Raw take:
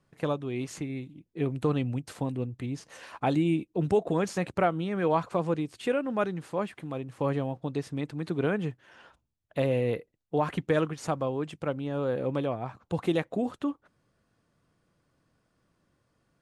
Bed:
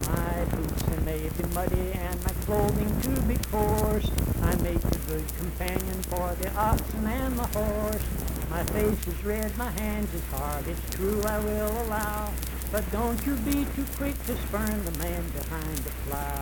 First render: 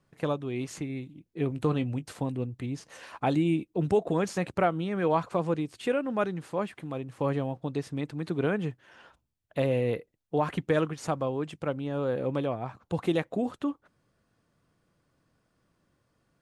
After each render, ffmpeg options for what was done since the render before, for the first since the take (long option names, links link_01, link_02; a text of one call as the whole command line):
ffmpeg -i in.wav -filter_complex "[0:a]asettb=1/sr,asplit=3[link_01][link_02][link_03];[link_01]atrim=end=1.494[link_04];[link_02]atrim=start=1.49:end=2.12,asetpts=PTS-STARTPTS,afade=type=in:duration=0.004:curve=qsin,afade=type=out:start_time=0.626:duration=0.004:curve=qsin,asplit=2[link_05][link_06];[link_06]adelay=19,volume=-12dB[link_07];[link_05][link_07]amix=inputs=2:normalize=0,atrim=end_sample=27783[link_08];[link_03]atrim=start=2.116[link_09];[link_04][link_08]acrossfade=duration=0.004:curve1=hsin:curve2=qsin[link_10];[link_10][link_09]acrossfade=duration=0.004:curve1=qsin:curve2=hsin" out.wav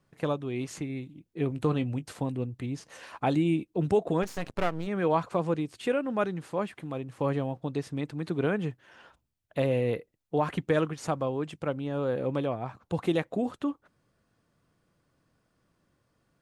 ffmpeg -i in.wav -filter_complex "[0:a]asplit=3[link_01][link_02][link_03];[link_01]afade=type=out:start_time=4.22:duration=0.02[link_04];[link_02]aeval=exprs='max(val(0),0)':channel_layout=same,afade=type=in:start_time=4.22:duration=0.02,afade=type=out:start_time=4.86:duration=0.02[link_05];[link_03]afade=type=in:start_time=4.86:duration=0.02[link_06];[link_04][link_05][link_06]amix=inputs=3:normalize=0" out.wav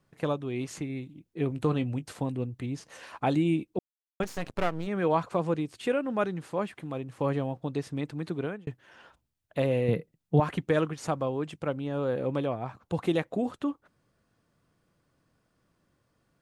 ffmpeg -i in.wav -filter_complex "[0:a]asettb=1/sr,asplit=3[link_01][link_02][link_03];[link_01]atrim=end=9.884[link_04];[link_02]atrim=start=9.88:end=10.4,asetpts=PTS-STARTPTS,afade=type=in:duration=0.004:curve=qsin,afade=type=out:start_time=0.516:duration=0.004:curve=qsin,equalizer=frequency=160:width=1.5:gain=14.5[link_05];[link_03]atrim=start=10.396[link_06];[link_04][link_05]acrossfade=duration=0.004:curve1=hsin:curve2=qsin[link_07];[link_07][link_06]acrossfade=duration=0.004:curve1=qsin:curve2=hsin,asplit=4[link_08][link_09][link_10][link_11];[link_08]atrim=end=3.79,asetpts=PTS-STARTPTS,afade=type=out:start_time=3.786:duration=0.004:curve=hsin[link_12];[link_09]atrim=start=3.79:end=4.2,asetpts=PTS-STARTPTS,volume=0[link_13];[link_10]atrim=start=4.2:end=8.67,asetpts=PTS-STARTPTS,afade=type=in:duration=0.004:curve=hsin,afade=type=out:start_time=3.87:duration=0.6:curve=qsin[link_14];[link_11]atrim=start=8.67,asetpts=PTS-STARTPTS,afade=type=in:duration=0.004:curve=hsin[link_15];[link_12][link_13][link_14][link_15]concat=n=4:v=0:a=1" out.wav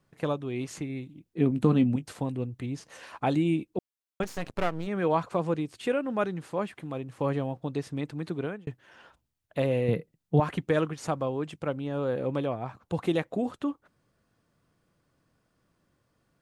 ffmpeg -i in.wav -filter_complex "[0:a]asettb=1/sr,asplit=3[link_01][link_02][link_03];[link_01]atrim=end=1.384[link_04];[link_02]atrim=start=1.38:end=1.96,asetpts=PTS-STARTPTS,afade=type=in:duration=0.004:curve=qsin,afade=type=out:start_time=0.576:duration=0.004:curve=qsin,equalizer=frequency=220:width_type=o:width=0.77:gain=13[link_05];[link_03]atrim=start=1.956[link_06];[link_04][link_05]acrossfade=duration=0.004:curve1=hsin:curve2=qsin[link_07];[link_07][link_06]acrossfade=duration=0.004:curve1=qsin:curve2=hsin" out.wav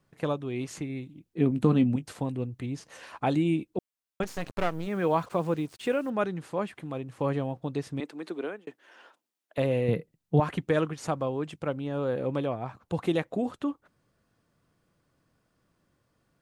ffmpeg -i in.wav -filter_complex "[0:a]asettb=1/sr,asplit=3[link_01][link_02][link_03];[link_01]atrim=end=4.364[link_04];[link_02]atrim=start=4.36:end=6.1,asetpts=PTS-STARTPTS,afade=type=in:duration=0.004:curve=qsin,afade=type=out:start_time=1.736:duration=0.004:curve=qsin,acrusher=bits=8:mix=0:aa=0.5[link_05];[link_03]atrim=start=6.096[link_06];[link_04][link_05]acrossfade=duration=0.004:curve1=hsin:curve2=qsin[link_07];[link_07][link_06]acrossfade=duration=0.004:curve1=qsin:curve2=hsin,asettb=1/sr,asplit=3[link_08][link_09][link_10];[link_08]atrim=end=8.004[link_11];[link_09]atrim=start=8:end=9.58,asetpts=PTS-STARTPTS,afade=type=in:duration=0.004:curve=qsin,afade=type=out:start_time=1.576:duration=0.004:curve=qsin,highpass=frequency=270:width=0.5412,highpass=frequency=270:width=1.3066[link_12];[link_10]atrim=start=9.576[link_13];[link_11][link_12]acrossfade=duration=0.004:curve1=hsin:curve2=qsin[link_14];[link_14][link_13]acrossfade=duration=0.004:curve1=qsin:curve2=hsin" out.wav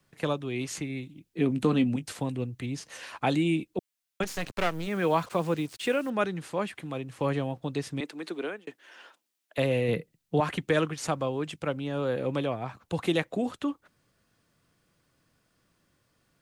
ffmpeg -i in.wav -filter_complex "[0:a]acrossover=split=220|960|1600[link_01][link_02][link_03][link_04];[link_01]alimiter=level_in=4dB:limit=-24dB:level=0:latency=1,volume=-4dB[link_05];[link_04]acontrast=62[link_06];[link_05][link_02][link_03][link_06]amix=inputs=4:normalize=0" out.wav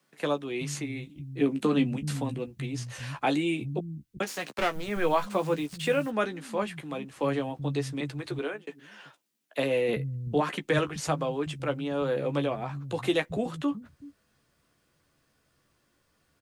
ffmpeg -i in.wav -filter_complex "[0:a]asplit=2[link_01][link_02];[link_02]adelay=14,volume=-7.5dB[link_03];[link_01][link_03]amix=inputs=2:normalize=0,acrossover=split=170[link_04][link_05];[link_04]adelay=380[link_06];[link_06][link_05]amix=inputs=2:normalize=0" out.wav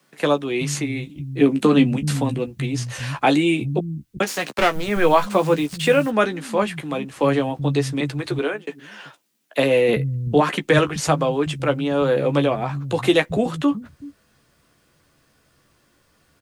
ffmpeg -i in.wav -af "volume=9.5dB" out.wav